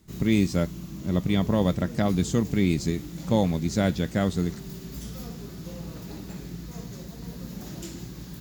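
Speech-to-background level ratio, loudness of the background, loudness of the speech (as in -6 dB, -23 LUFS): 13.0 dB, -38.5 LUFS, -25.5 LUFS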